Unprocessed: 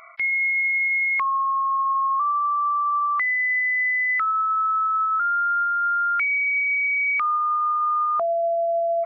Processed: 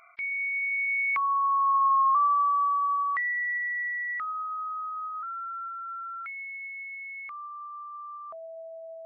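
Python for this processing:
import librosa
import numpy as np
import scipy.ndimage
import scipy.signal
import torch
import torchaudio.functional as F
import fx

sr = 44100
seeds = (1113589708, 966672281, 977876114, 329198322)

y = fx.doppler_pass(x, sr, speed_mps=11, closest_m=7.4, pass_at_s=2.02)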